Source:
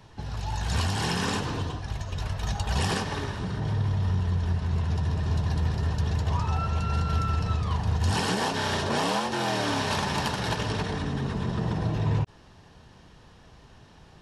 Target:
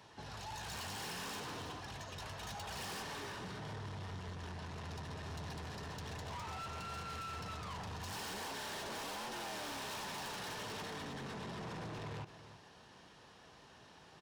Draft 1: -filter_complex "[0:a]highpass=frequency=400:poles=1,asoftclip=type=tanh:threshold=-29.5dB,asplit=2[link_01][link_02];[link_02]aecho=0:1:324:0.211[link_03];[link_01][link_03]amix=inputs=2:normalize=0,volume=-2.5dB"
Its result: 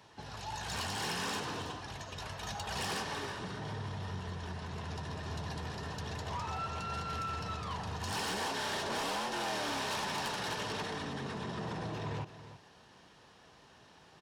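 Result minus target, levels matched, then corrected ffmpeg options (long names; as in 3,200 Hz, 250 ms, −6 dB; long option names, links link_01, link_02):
soft clipping: distortion −6 dB
-filter_complex "[0:a]highpass=frequency=400:poles=1,asoftclip=type=tanh:threshold=-40dB,asplit=2[link_01][link_02];[link_02]aecho=0:1:324:0.211[link_03];[link_01][link_03]amix=inputs=2:normalize=0,volume=-2.5dB"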